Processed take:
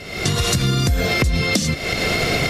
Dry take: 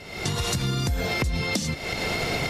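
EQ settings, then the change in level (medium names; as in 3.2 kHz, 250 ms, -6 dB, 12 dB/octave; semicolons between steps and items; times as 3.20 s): peaking EQ 890 Hz -10.5 dB 0.23 oct; +7.5 dB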